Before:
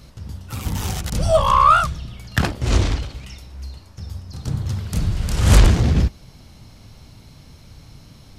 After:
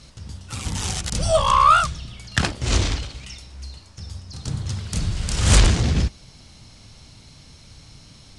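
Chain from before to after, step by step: steep low-pass 10000 Hz 48 dB/oct; high shelf 2100 Hz +9 dB; gain -3.5 dB

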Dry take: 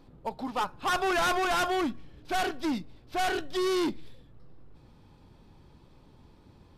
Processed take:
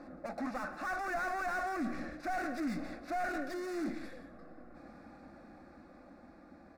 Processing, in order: Doppler pass-by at 2.31, 10 m/s, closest 6.1 m; elliptic low-pass 12000 Hz; notch 1300 Hz, Q 26; reverse; compressor 6:1, threshold -44 dBFS, peak gain reduction 15.5 dB; reverse; overdrive pedal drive 30 dB, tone 1700 Hz, clips at -35.5 dBFS; fixed phaser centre 630 Hz, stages 8; on a send: echo 0.172 s -13.5 dB; on the sum: mismatched tape noise reduction decoder only; gain +8 dB

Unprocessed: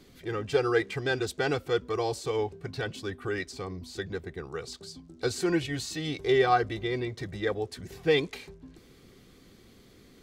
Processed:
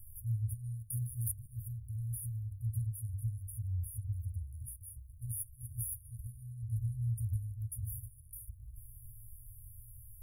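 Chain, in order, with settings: notches 50/100/150/200/250/300/350/400 Hz; compressor, threshold -31 dBFS, peak gain reduction 12.5 dB; bell 74 Hz -7.5 dB 2.3 oct; FFT band-reject 120–9500 Hz; 0.9–1.46 three-band squash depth 100%; gain +16 dB

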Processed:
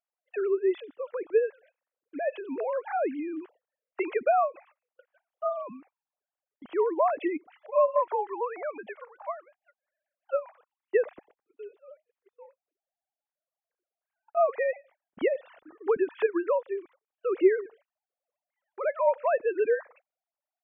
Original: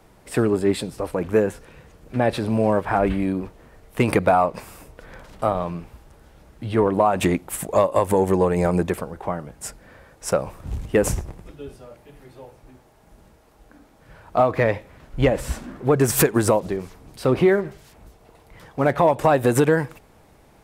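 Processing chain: sine-wave speech; gate -46 dBFS, range -26 dB; 7.49–10.53 resonant low shelf 510 Hz -9.5 dB, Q 1.5; gain -7.5 dB

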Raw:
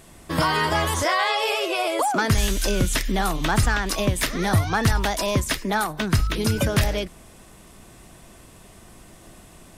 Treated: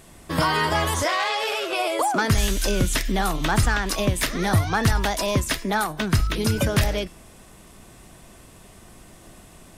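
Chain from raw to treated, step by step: de-hum 334.6 Hz, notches 29; 1.08–1.73 core saturation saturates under 2200 Hz

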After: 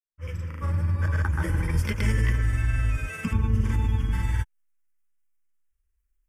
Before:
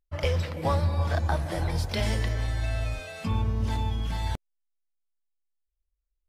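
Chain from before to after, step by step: opening faded in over 1.76 s; in parallel at +1.5 dB: compressor, threshold -36 dBFS, peak gain reduction 13.5 dB; on the sum: fixed phaser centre 1700 Hz, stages 4; grains, pitch spread up and down by 0 st; gain +3.5 dB

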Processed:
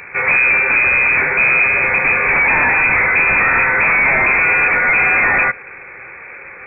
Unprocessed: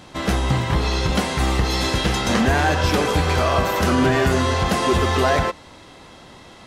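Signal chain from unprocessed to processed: added harmonics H 5 -7 dB, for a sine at -8 dBFS; inverted band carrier 2500 Hz

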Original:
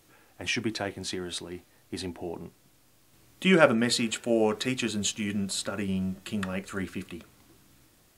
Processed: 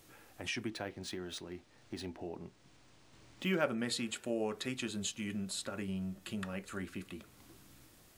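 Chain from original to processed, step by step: compressor 1.5:1, threshold -52 dBFS, peak gain reduction 13.5 dB; 0.67–3.64 decimation joined by straight lines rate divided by 3×

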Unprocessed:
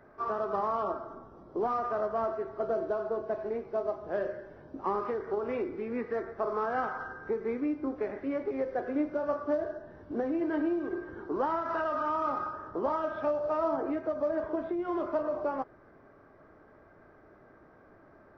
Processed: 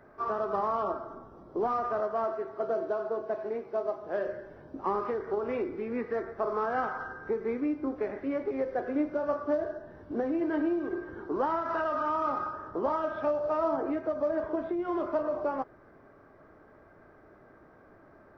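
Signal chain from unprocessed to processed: 2–4.27 HPF 220 Hz 6 dB/oct; gain +1 dB

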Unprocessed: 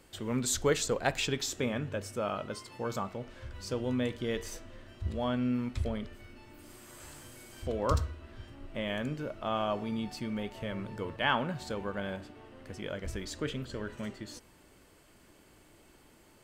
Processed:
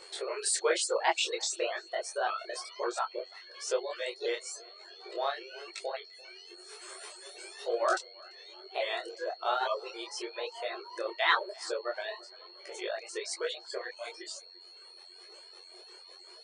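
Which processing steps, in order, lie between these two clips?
repeated pitch sweeps +3.5 st, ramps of 0.284 s; reverb removal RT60 2 s; FFT band-pass 340–9700 Hz; reverb removal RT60 0.59 s; spectral repair 6.26–6.68, 530–1100 Hz before; in parallel at -1 dB: compressor, threshold -49 dBFS, peak gain reduction 22.5 dB; on the sum: whine 4300 Hz -55 dBFS; on a send: tape echo 0.343 s, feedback 39%, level -23 dB, low-pass 3400 Hz; on the sum: detuned doubles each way 36 cents; gain +7.5 dB

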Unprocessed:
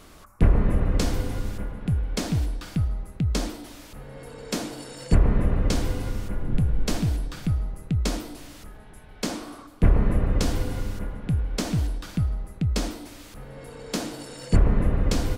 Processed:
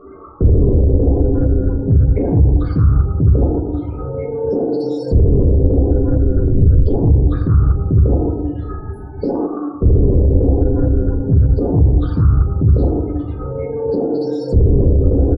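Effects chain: HPF 290 Hz 6 dB/oct; on a send: dark delay 0.298 s, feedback 67%, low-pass 3800 Hz, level -18 dB; on the sum: loudest bins only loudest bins 16; comb 2.4 ms, depth 69%; plate-style reverb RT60 0.89 s, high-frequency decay 0.35×, DRR -3 dB; in parallel at -10 dB: soft clip -21 dBFS, distortion -13 dB; on the sum: limiter -22 dBFS, peak gain reduction 13.5 dB; tilt -3 dB/oct; Doppler distortion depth 0.37 ms; gain +8 dB

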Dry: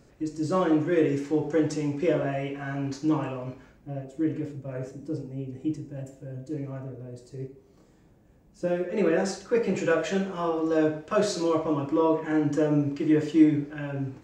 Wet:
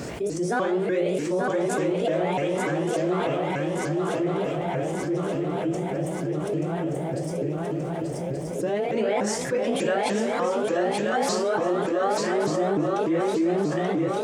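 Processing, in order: repeated pitch sweeps +5.5 st, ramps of 0.297 s; HPF 66 Hz; low shelf 100 Hz -8 dB; swung echo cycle 1.177 s, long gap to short 3:1, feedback 46%, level -5.5 dB; fast leveller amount 70%; gain -5 dB

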